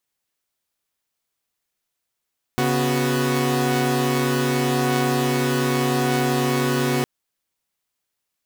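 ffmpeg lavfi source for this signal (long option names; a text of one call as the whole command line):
ffmpeg -f lavfi -i "aevalsrc='0.0944*((2*mod(138.59*t,1)-1)+(2*mod(246.94*t,1)-1)+(2*mod(369.99*t,1)-1))':duration=4.46:sample_rate=44100" out.wav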